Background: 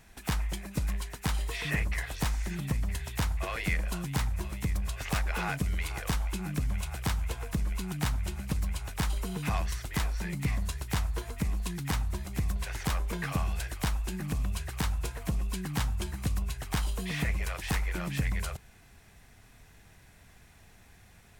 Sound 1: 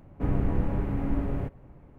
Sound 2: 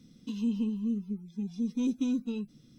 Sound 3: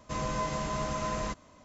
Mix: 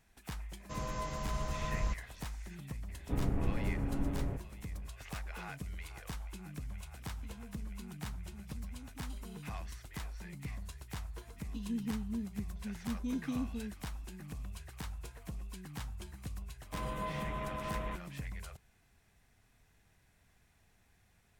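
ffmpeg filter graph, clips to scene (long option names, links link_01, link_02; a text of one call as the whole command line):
ffmpeg -i bed.wav -i cue0.wav -i cue1.wav -i cue2.wav -filter_complex "[3:a]asplit=2[link_01][link_02];[2:a]asplit=2[link_03][link_04];[0:a]volume=-12.5dB[link_05];[link_01]asubboost=boost=10.5:cutoff=120[link_06];[link_03]acompressor=threshold=-44dB:ratio=6:attack=3.2:release=140:knee=1:detection=peak[link_07];[link_02]aresample=8000,aresample=44100[link_08];[link_06]atrim=end=1.64,asetpts=PTS-STARTPTS,volume=-7.5dB,afade=type=in:duration=0.004:curve=hsin,afade=type=out:start_time=1.636:duration=0.004:curve=hsin,adelay=600[link_09];[1:a]atrim=end=1.98,asetpts=PTS-STARTPTS,volume=-7dB,afade=type=in:duration=0.004:curve=hsin,afade=type=out:start_time=1.976:duration=0.004:curve=hsin,adelay=2890[link_10];[link_07]atrim=end=2.78,asetpts=PTS-STARTPTS,volume=-8dB,afade=type=in:duration=0.004:curve=hsin,afade=type=out:start_time=2.776:duration=0.004:curve=hsin,adelay=6960[link_11];[link_04]atrim=end=2.78,asetpts=PTS-STARTPTS,volume=-7.5dB,afade=type=in:duration=0.004:curve=hsin,afade=type=out:start_time=2.776:duration=0.004:curve=hsin,adelay=11270[link_12];[link_08]atrim=end=1.64,asetpts=PTS-STARTPTS,volume=-7dB,afade=type=in:duration=0.004:curve=hsin,afade=type=out:start_time=1.636:duration=0.004:curve=hsin,adelay=16630[link_13];[link_05][link_09][link_10][link_11][link_12][link_13]amix=inputs=6:normalize=0" out.wav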